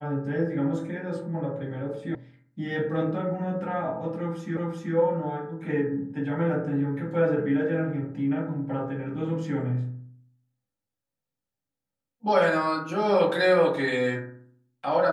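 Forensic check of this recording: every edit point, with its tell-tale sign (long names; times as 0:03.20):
0:02.15: cut off before it has died away
0:04.57: the same again, the last 0.38 s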